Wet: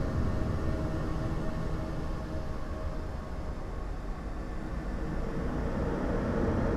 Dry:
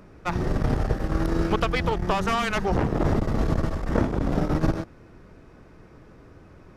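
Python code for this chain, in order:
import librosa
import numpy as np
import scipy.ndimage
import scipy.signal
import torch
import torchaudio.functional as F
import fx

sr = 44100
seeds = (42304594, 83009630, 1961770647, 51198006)

y = fx.doppler_pass(x, sr, speed_mps=10, closest_m=7.6, pass_at_s=2.41)
y = fx.paulstretch(y, sr, seeds[0], factor=17.0, window_s=0.25, from_s=3.56)
y = y * librosa.db_to_amplitude(-1.5)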